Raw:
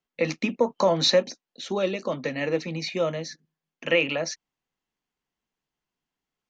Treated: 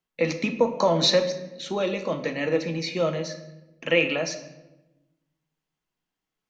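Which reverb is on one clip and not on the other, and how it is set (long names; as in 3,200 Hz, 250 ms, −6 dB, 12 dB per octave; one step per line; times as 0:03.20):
rectangular room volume 420 cubic metres, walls mixed, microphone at 0.6 metres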